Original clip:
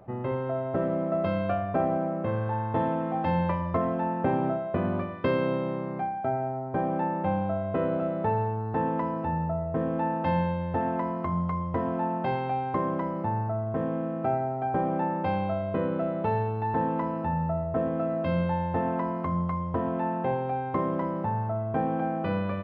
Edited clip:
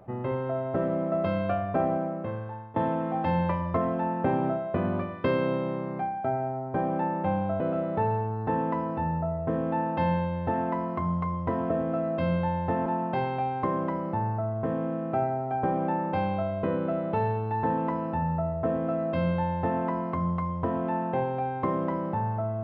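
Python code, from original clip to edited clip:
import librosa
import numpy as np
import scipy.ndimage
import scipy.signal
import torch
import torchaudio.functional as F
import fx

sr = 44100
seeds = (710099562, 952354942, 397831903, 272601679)

y = fx.edit(x, sr, fx.fade_out_to(start_s=1.9, length_s=0.86, floor_db=-18.5),
    fx.cut(start_s=7.6, length_s=0.27),
    fx.duplicate(start_s=17.76, length_s=1.16, to_s=11.97), tone=tone)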